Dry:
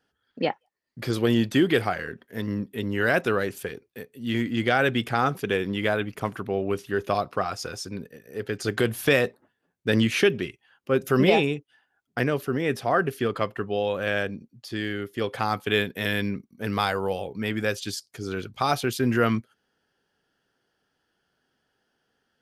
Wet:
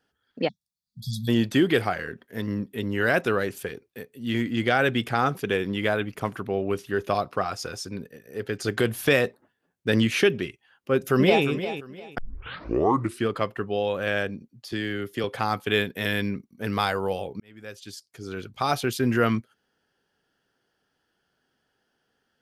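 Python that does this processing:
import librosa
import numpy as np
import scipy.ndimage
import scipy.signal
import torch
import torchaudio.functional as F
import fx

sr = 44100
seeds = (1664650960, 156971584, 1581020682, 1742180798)

y = fx.spec_erase(x, sr, start_s=0.48, length_s=0.8, low_hz=220.0, high_hz=3300.0)
y = fx.echo_throw(y, sr, start_s=10.95, length_s=0.5, ms=350, feedback_pct=25, wet_db=-11.0)
y = fx.band_squash(y, sr, depth_pct=70, at=(14.72, 15.24))
y = fx.edit(y, sr, fx.tape_start(start_s=12.18, length_s=1.1),
    fx.fade_in_span(start_s=17.4, length_s=1.42), tone=tone)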